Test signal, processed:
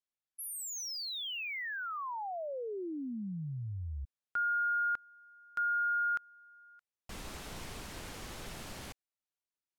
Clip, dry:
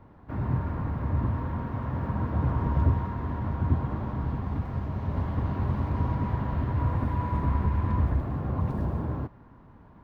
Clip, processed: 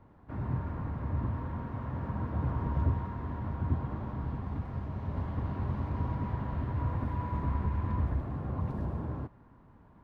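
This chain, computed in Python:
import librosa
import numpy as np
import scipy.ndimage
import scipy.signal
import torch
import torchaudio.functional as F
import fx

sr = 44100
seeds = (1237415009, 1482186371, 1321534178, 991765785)

y = np.interp(np.arange(len(x)), np.arange(len(x))[::2], x[::2])
y = y * 10.0 ** (-5.5 / 20.0)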